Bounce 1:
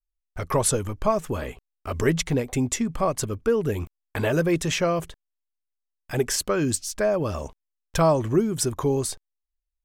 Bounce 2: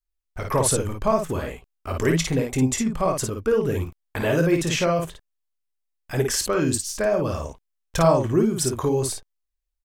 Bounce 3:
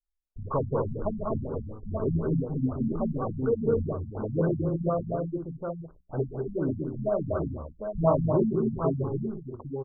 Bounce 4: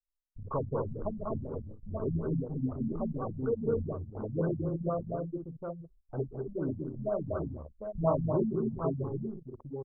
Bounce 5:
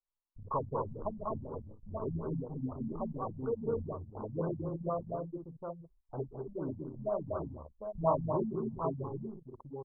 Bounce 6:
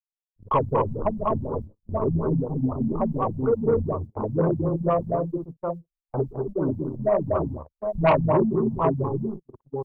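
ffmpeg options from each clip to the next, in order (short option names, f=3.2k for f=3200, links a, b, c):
-af "aecho=1:1:23|54:0.266|0.631"
-af "bandreject=f=60:t=h:w=6,bandreject=f=120:t=h:w=6,bandreject=f=180:t=h:w=6,bandreject=f=240:t=h:w=6,bandreject=f=300:t=h:w=6,bandreject=f=360:t=h:w=6,bandreject=f=420:t=h:w=6,aecho=1:1:43|191|204|811:0.106|0.447|0.447|0.501,afftfilt=real='re*lt(b*sr/1024,240*pow(1600/240,0.5+0.5*sin(2*PI*4.1*pts/sr)))':imag='im*lt(b*sr/1024,240*pow(1600/240,0.5+0.5*sin(2*PI*4.1*pts/sr)))':win_size=1024:overlap=0.75,volume=-5dB"
-af "anlmdn=2.51,volume=-5dB"
-af "lowpass=f=1k:t=q:w=3.4,volume=-5.5dB"
-af "agate=range=-37dB:threshold=-45dB:ratio=16:detection=peak,aeval=exprs='0.158*sin(PI/2*2*val(0)/0.158)':c=same,volume=3.5dB"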